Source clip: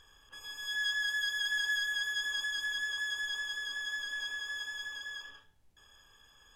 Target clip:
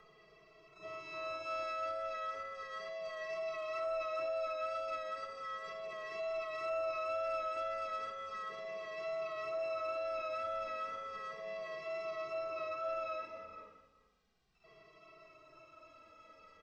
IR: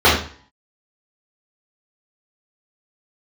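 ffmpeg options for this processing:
-filter_complex "[0:a]highpass=frequency=210:poles=1,alimiter=level_in=10.5dB:limit=-24dB:level=0:latency=1:release=14,volume=-10.5dB,aecho=1:1:163:0.126,asplit=3[link_01][link_02][link_03];[link_02]asetrate=37084,aresample=44100,atempo=1.18921,volume=-12dB[link_04];[link_03]asetrate=88200,aresample=44100,atempo=0.5,volume=-10dB[link_05];[link_01][link_04][link_05]amix=inputs=3:normalize=0,asoftclip=type=tanh:threshold=-32.5dB,asetrate=17375,aresample=44100,afreqshift=-20,asplit=2[link_06][link_07];[link_07]adelay=2.1,afreqshift=-0.35[link_08];[link_06][link_08]amix=inputs=2:normalize=1,volume=4dB"

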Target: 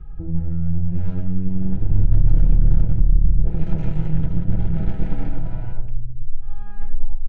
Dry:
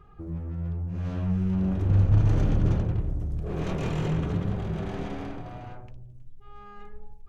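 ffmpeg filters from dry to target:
ffmpeg -i in.wav -filter_complex "[0:a]aeval=exprs='0.299*(cos(1*acos(clip(val(0)/0.299,-1,1)))-cos(1*PI/2))+0.0376*(cos(6*acos(clip(val(0)/0.299,-1,1)))-cos(6*PI/2))+0.0119*(cos(7*acos(clip(val(0)/0.299,-1,1)))-cos(7*PI/2))':channel_layout=same,asuperstop=centerf=1100:order=8:qfactor=4.7,aecho=1:1:6.1:0.56,areverse,acompressor=threshold=-30dB:ratio=6,areverse,aemphasis=mode=reproduction:type=riaa,acrossover=split=710[link_01][link_02];[link_02]acontrast=36[link_03];[link_01][link_03]amix=inputs=2:normalize=0,lowshelf=frequency=130:gain=7.5,volume=-2dB" out.wav

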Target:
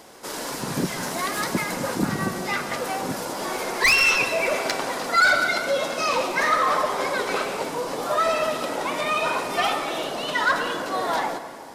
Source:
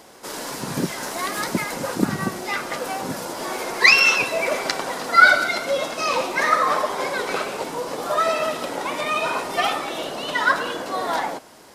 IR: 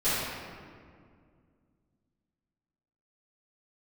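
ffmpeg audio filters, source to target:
-filter_complex "[0:a]asoftclip=type=tanh:threshold=-13dB,asplit=2[link_01][link_02];[1:a]atrim=start_sample=2205,adelay=119[link_03];[link_02][link_03]afir=irnorm=-1:irlink=0,volume=-24.5dB[link_04];[link_01][link_04]amix=inputs=2:normalize=0"

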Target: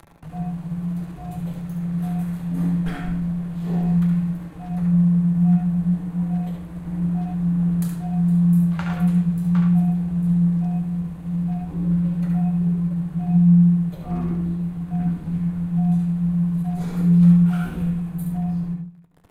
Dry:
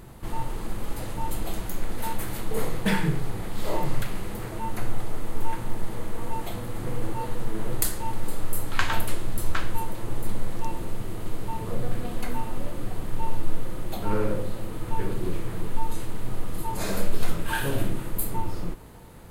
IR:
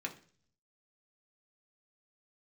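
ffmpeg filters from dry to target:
-filter_complex "[0:a]highshelf=frequency=2300:gain=-10,aeval=exprs='sgn(val(0))*max(abs(val(0))-0.00944,0)':channel_layout=same,flanger=delay=3.9:depth=7.9:regen=81:speed=0.23:shape=sinusoidal,afreqshift=-180,acompressor=mode=upward:threshold=-37dB:ratio=2.5,asplit=2[link_01][link_02];[1:a]atrim=start_sample=2205,adelay=70[link_03];[link_02][link_03]afir=irnorm=-1:irlink=0,volume=-3.5dB[link_04];[link_01][link_04]amix=inputs=2:normalize=0"

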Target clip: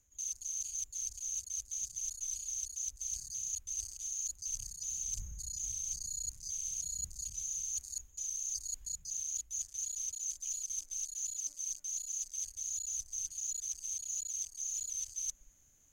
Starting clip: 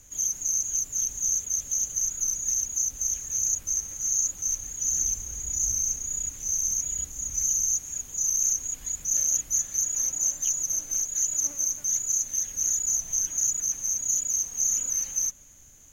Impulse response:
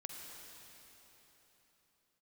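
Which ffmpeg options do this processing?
-af "afwtdn=0.0158,areverse,acompressor=threshold=-40dB:ratio=6,areverse,volume=2.5dB"

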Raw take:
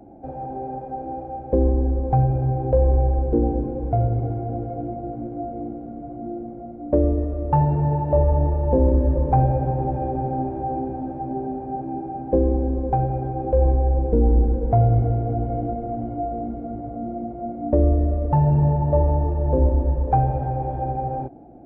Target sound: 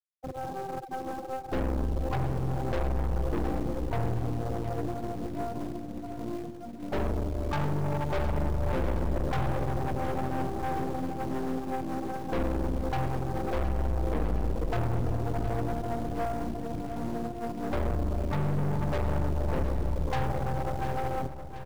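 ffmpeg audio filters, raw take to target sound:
ffmpeg -i in.wav -filter_complex "[0:a]asplit=3[link_01][link_02][link_03];[link_02]asetrate=29433,aresample=44100,atempo=1.49831,volume=-6dB[link_04];[link_03]asetrate=58866,aresample=44100,atempo=0.749154,volume=-13dB[link_05];[link_01][link_04][link_05]amix=inputs=3:normalize=0,afftfilt=real='re*gte(hypot(re,im),0.1)':imag='im*gte(hypot(re,im),0.1)':win_size=1024:overlap=0.75,asplit=2[link_06][link_07];[link_07]acrusher=bits=2:mode=log:mix=0:aa=0.000001,volume=-4dB[link_08];[link_06][link_08]amix=inputs=2:normalize=0,aeval=exprs='(tanh(12.6*val(0)+0.65)-tanh(0.65))/12.6':channel_layout=same,aecho=1:1:715|1430|2145|2860|3575|4290:0.266|0.152|0.0864|0.0493|0.0281|0.016,volume=-5.5dB" out.wav

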